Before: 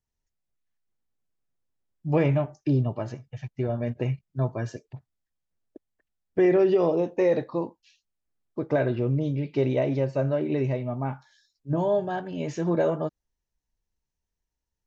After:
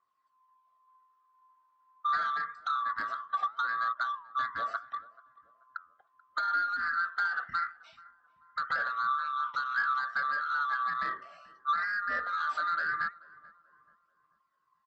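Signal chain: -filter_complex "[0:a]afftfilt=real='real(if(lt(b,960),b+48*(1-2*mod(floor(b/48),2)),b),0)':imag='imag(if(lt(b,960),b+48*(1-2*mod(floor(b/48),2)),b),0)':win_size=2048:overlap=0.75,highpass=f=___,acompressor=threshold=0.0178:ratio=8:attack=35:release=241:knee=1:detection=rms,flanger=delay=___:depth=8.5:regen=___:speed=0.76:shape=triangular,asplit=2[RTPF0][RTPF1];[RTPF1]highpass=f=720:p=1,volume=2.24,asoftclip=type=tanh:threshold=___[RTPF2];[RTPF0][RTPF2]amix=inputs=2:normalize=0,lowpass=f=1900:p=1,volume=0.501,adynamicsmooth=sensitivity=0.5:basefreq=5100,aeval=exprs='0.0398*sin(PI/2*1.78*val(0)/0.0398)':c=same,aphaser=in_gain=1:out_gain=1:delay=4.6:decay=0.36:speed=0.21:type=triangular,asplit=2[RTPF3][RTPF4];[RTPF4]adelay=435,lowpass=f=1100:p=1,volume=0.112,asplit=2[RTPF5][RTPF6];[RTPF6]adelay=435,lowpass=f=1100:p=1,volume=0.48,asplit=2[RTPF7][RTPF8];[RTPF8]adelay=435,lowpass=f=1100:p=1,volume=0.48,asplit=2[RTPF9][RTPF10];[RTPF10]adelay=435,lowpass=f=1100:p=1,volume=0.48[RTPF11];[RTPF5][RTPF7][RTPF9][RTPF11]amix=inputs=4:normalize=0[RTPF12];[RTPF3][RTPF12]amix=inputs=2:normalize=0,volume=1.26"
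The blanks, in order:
66, 3.7, -85, 0.0501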